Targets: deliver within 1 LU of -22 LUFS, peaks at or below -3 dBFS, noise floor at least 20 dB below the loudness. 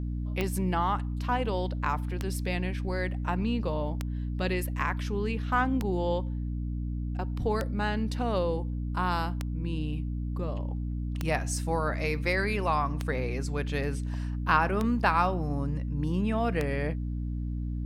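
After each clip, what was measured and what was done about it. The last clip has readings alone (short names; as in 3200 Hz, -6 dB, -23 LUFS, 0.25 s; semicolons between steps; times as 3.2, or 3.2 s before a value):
clicks 10; hum 60 Hz; harmonics up to 300 Hz; hum level -30 dBFS; loudness -30.0 LUFS; peak -10.0 dBFS; loudness target -22.0 LUFS
-> de-click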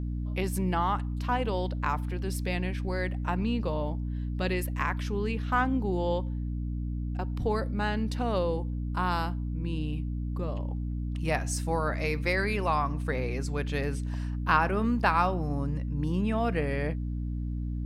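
clicks 0; hum 60 Hz; harmonics up to 300 Hz; hum level -30 dBFS
-> de-hum 60 Hz, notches 5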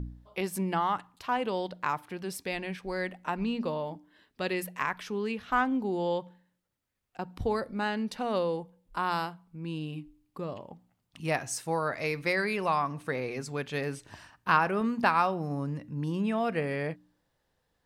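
hum none; loudness -31.5 LUFS; peak -10.5 dBFS; loudness target -22.0 LUFS
-> gain +9.5 dB; limiter -3 dBFS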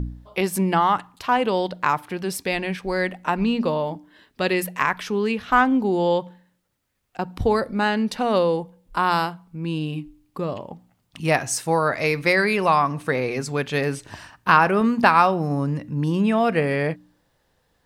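loudness -22.0 LUFS; peak -3.0 dBFS; noise floor -68 dBFS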